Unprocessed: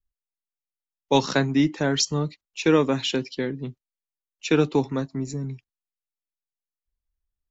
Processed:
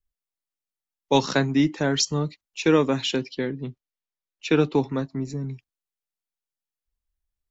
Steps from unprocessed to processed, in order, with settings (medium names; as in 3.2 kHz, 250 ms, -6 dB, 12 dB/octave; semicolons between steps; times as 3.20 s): 3.21–5.48 s: low-pass 5.2 kHz 12 dB/octave